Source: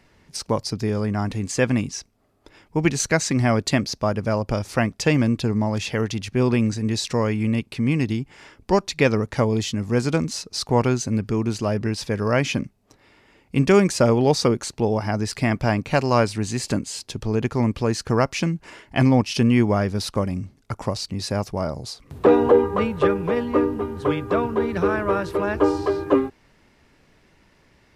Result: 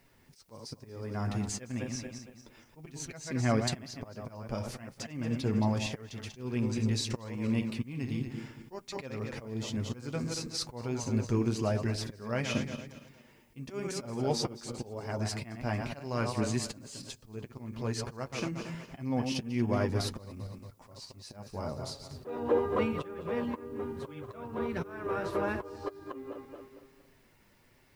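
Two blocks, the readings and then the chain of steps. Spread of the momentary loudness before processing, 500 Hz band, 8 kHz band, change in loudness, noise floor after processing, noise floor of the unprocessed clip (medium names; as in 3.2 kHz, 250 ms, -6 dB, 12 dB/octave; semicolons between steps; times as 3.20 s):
9 LU, -14.0 dB, -11.0 dB, -12.5 dB, -63 dBFS, -59 dBFS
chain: backward echo that repeats 115 ms, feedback 56%, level -9 dB; slow attack 485 ms; flange 1 Hz, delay 7.2 ms, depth 1.6 ms, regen -32%; added noise blue -70 dBFS; trim -4 dB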